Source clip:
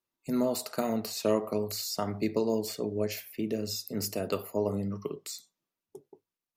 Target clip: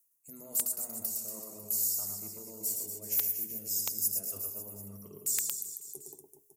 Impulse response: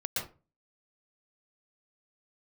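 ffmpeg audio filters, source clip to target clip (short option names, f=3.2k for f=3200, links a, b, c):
-filter_complex "[0:a]lowshelf=f=93:g=9.5,bandreject=f=60:t=h:w=6,bandreject=f=120:t=h:w=6,bandreject=f=180:t=h:w=6,bandreject=f=240:t=h:w=6,bandreject=f=300:t=h:w=6,bandreject=f=360:t=h:w=6,bandreject=f=420:t=h:w=6,areverse,acompressor=threshold=-46dB:ratio=12,areverse,aexciter=amount=14.7:drive=6.5:freq=6.2k,asplit=2[a][b];[b]aecho=0:1:110|236.5|382|549.3|741.7:0.631|0.398|0.251|0.158|0.1[c];[a][c]amix=inputs=2:normalize=0,aeval=exprs='(mod(5.01*val(0)+1,2)-1)/5.01':c=same,volume=-2.5dB"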